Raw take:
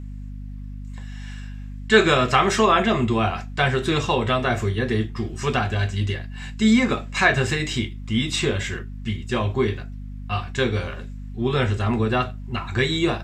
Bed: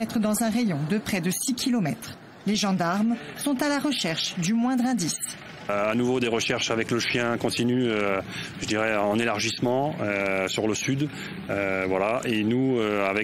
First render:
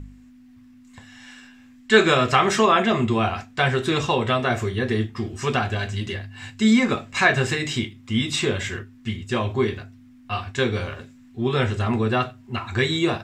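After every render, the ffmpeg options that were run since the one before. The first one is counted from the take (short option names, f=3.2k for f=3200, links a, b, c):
-af "bandreject=f=50:t=h:w=4,bandreject=f=100:t=h:w=4,bandreject=f=150:t=h:w=4,bandreject=f=200:t=h:w=4"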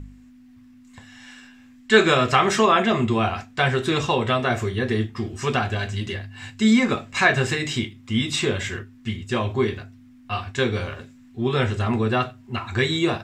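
-af anull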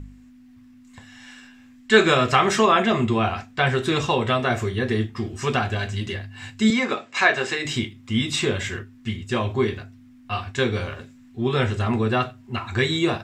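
-filter_complex "[0:a]asettb=1/sr,asplit=3[a][b][c];[a]atrim=end=3.114[d];[b]atrim=start=3.11:end=3.67,asetpts=PTS-STARTPTS,afade=t=in:d=0.004:c=qsin,afade=t=out:st=0.556:d=0.004:c=qsin,acrossover=split=5100[e][f];[f]acompressor=threshold=-53dB:ratio=4:attack=1:release=60[g];[e][g]amix=inputs=2:normalize=0[h];[c]atrim=start=3.666[i];[d][h]acrossfade=d=0.004:c1=hsin:c2=qsin[j];[j][i]acrossfade=d=0.004:c1=qsin:c2=hsin,asettb=1/sr,asplit=3[k][l][m];[k]atrim=end=6.704[n];[l]atrim=start=6.7:end=7.65,asetpts=PTS-STARTPTS,afade=t=in:d=0.004:c=qsin,afade=t=out:st=0.946:d=0.004:c=qsin,highpass=330,lowpass=7k[o];[m]atrim=start=7.646[p];[n][o]acrossfade=d=0.004:c1=hsin:c2=qsin[q];[q][p]acrossfade=d=0.004:c1=qsin:c2=hsin"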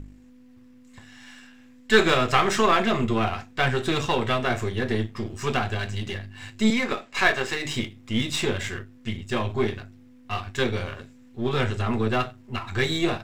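-af "aeval=exprs='if(lt(val(0),0),0.447*val(0),val(0))':c=same"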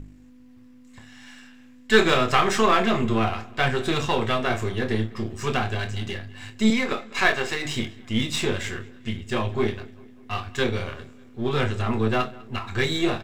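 -filter_complex "[0:a]asplit=2[a][b];[b]adelay=27,volume=-11dB[c];[a][c]amix=inputs=2:normalize=0,asplit=2[d][e];[e]adelay=200,lowpass=f=4.8k:p=1,volume=-22dB,asplit=2[f][g];[g]adelay=200,lowpass=f=4.8k:p=1,volume=0.53,asplit=2[h][i];[i]adelay=200,lowpass=f=4.8k:p=1,volume=0.53,asplit=2[j][k];[k]adelay=200,lowpass=f=4.8k:p=1,volume=0.53[l];[d][f][h][j][l]amix=inputs=5:normalize=0"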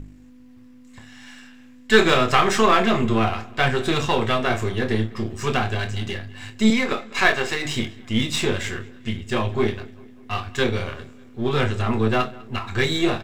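-af "volume=2.5dB,alimiter=limit=-1dB:level=0:latency=1"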